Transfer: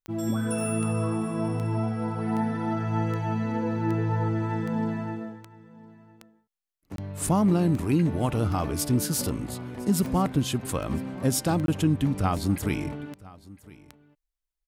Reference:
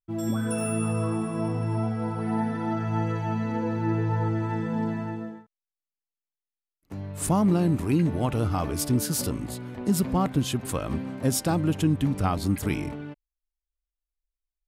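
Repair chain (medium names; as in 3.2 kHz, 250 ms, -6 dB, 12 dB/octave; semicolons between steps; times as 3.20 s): de-click; interpolate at 6.96/11.66 s, 22 ms; inverse comb 1009 ms -21.5 dB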